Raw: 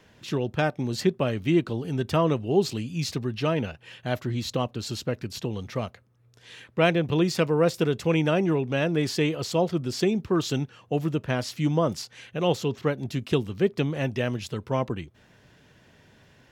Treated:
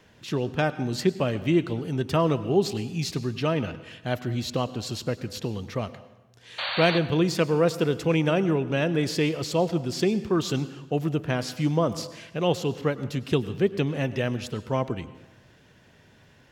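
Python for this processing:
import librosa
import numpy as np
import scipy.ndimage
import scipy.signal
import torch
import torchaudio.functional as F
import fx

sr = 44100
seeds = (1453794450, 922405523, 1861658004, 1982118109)

y = fx.spec_paint(x, sr, seeds[0], shape='noise', start_s=6.58, length_s=0.41, low_hz=510.0, high_hz=4600.0, level_db=-30.0)
y = fx.rev_plate(y, sr, seeds[1], rt60_s=1.1, hf_ratio=0.8, predelay_ms=85, drr_db=14.5)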